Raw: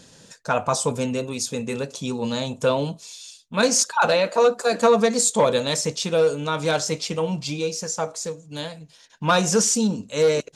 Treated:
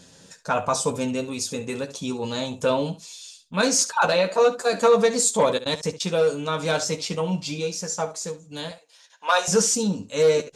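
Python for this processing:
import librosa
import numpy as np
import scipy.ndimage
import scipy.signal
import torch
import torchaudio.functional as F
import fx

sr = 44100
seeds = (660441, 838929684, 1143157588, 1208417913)

y = fx.step_gate(x, sr, bpm=175, pattern='x.x.x.xx', floor_db=-24.0, edge_ms=4.5, at=(5.37, 6.16), fade=0.02)
y = fx.highpass(y, sr, hz=530.0, slope=24, at=(8.71, 9.48))
y = fx.room_early_taps(y, sr, ms=(11, 70), db=(-6.0, -14.0))
y = y * librosa.db_to_amplitude(-2.0)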